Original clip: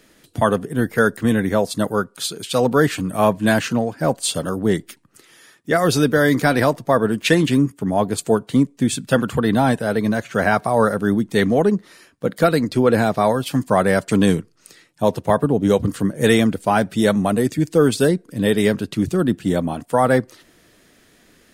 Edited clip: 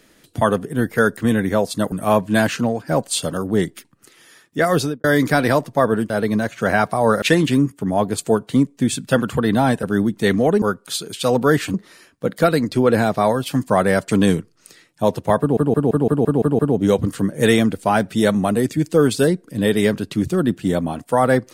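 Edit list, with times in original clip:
1.92–3.04 move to 11.74
5.86–6.16 studio fade out
9.83–10.95 move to 7.22
15.4 stutter 0.17 s, 8 plays

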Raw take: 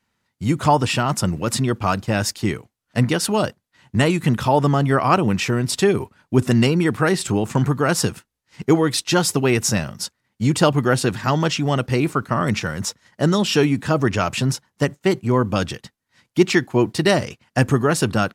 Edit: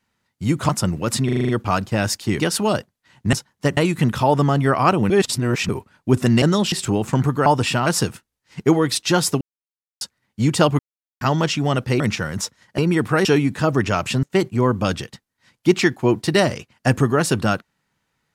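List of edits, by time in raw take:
0.69–1.09 move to 7.88
1.65 stutter 0.04 s, 7 plays
2.55–3.08 cut
5.35–5.94 reverse
6.67–7.14 swap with 13.22–13.52
9.43–10.03 mute
10.81–11.23 mute
12.02–12.44 cut
14.5–14.94 move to 4.02

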